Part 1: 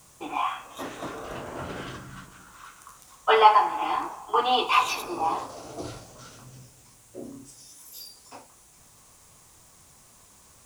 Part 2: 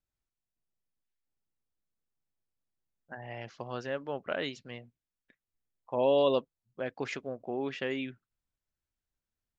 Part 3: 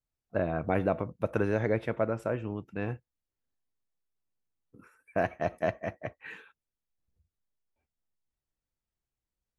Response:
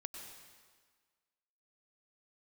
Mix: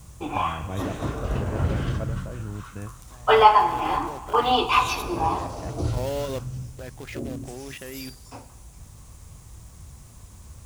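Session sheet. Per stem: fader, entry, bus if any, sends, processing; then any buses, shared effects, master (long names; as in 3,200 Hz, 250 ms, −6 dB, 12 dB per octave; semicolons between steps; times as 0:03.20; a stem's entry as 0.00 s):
−1.5 dB, 0.00 s, no bus, send −6 dB, low-shelf EQ 220 Hz +11.5 dB
+3.0 dB, 0.00 s, bus A, no send, low-pass that shuts in the quiet parts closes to 310 Hz, open at −32 dBFS; log-companded quantiser 4 bits
−0.5 dB, 0.00 s, bus A, no send, low-shelf EQ 180 Hz +6 dB; automatic ducking −21 dB, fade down 0.40 s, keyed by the second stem
bus A: 0.0 dB, output level in coarse steps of 13 dB; brickwall limiter −23 dBFS, peak gain reduction 8.5 dB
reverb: on, RT60 1.6 s, pre-delay 91 ms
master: parametric band 62 Hz +11.5 dB 2.1 octaves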